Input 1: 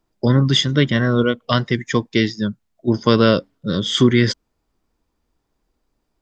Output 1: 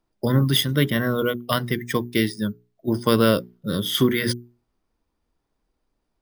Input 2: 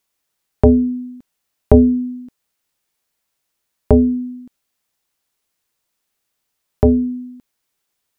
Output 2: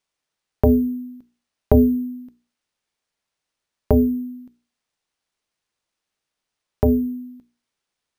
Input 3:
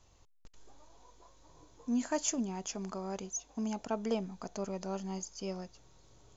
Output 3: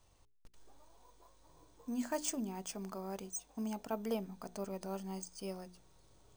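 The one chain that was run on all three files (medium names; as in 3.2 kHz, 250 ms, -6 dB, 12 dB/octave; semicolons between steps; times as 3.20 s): hum notches 60/120/180/240/300/360/420 Hz; careless resampling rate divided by 3×, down filtered, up hold; trim -3.5 dB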